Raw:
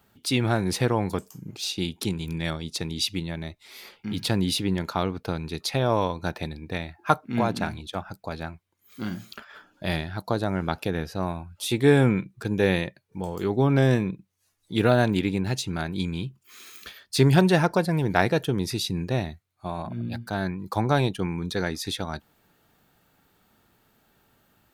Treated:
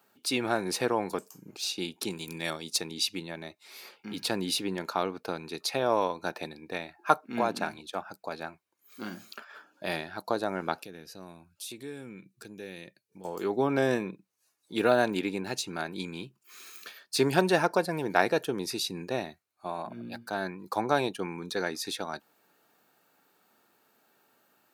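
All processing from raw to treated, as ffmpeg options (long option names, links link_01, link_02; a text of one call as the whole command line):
ffmpeg -i in.wav -filter_complex "[0:a]asettb=1/sr,asplit=3[link_01][link_02][link_03];[link_01]atrim=end=2.114[link_04];[link_02]atrim=start=2.11:end=2.81,asetpts=PTS-STARTPTS,afade=type=in:duration=0.004:curve=qsin,afade=type=out:start_time=0.696:duration=0.004:curve=qsin,highshelf=frequency=4200:gain=9,bandreject=frequency=1500:width=18[link_05];[link_03]atrim=start=2.806[link_06];[link_04][link_05]acrossfade=duration=0.004:curve1=hsin:curve2=qsin[link_07];[link_07][link_06]acrossfade=duration=0.004:curve1=qsin:curve2=hsin,asettb=1/sr,asplit=3[link_08][link_09][link_10];[link_08]atrim=end=10.824[link_11];[link_09]atrim=start=10.82:end=13.25,asetpts=PTS-STARTPTS,afade=type=in:duration=0.004:curve=qsin,afade=type=out:start_time=2.426:duration=0.004:curve=qsin,equalizer=frequency=890:width_type=o:width=2.3:gain=-13,acompressor=threshold=-35dB:ratio=3:attack=3.2:release=140:knee=1:detection=peak[link_12];[link_10]atrim=start=13.246[link_13];[link_11][link_12]acrossfade=duration=0.004:curve1=hsin:curve2=qsin[link_14];[link_14][link_13]acrossfade=duration=0.004:curve1=qsin:curve2=hsin,highpass=310,equalizer=frequency=3300:width_type=o:width=0.26:gain=-5.5,bandreject=frequency=2000:width=13,volume=-1.5dB" out.wav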